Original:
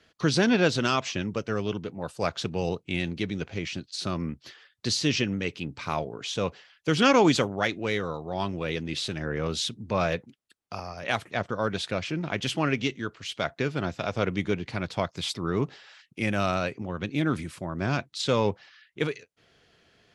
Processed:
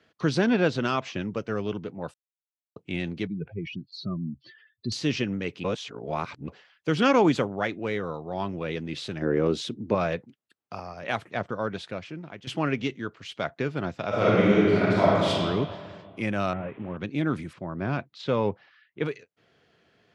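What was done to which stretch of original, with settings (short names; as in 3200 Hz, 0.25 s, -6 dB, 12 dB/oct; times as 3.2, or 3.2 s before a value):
0.42–1.16 high shelf 8900 Hz -10 dB
2.14–2.76 mute
3.27–4.92 spectral contrast raised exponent 2.5
5.64–6.48 reverse
7.21–8.55 dynamic EQ 5000 Hz, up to -4 dB, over -41 dBFS, Q 0.81
9.22–9.95 bell 340 Hz +11 dB 1.3 oct
11.46–12.47 fade out, to -15 dB
14.08–15.28 reverb throw, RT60 2 s, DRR -9 dB
16.53–16.97 delta modulation 16 kbps, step -43 dBFS
17.53–19.06 air absorption 150 m
whole clip: HPF 98 Hz; high shelf 3600 Hz -10.5 dB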